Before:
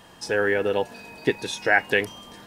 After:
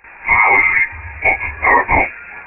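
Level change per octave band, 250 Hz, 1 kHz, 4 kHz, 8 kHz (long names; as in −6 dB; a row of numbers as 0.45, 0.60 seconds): +1.5 dB, +15.5 dB, below −15 dB, below −40 dB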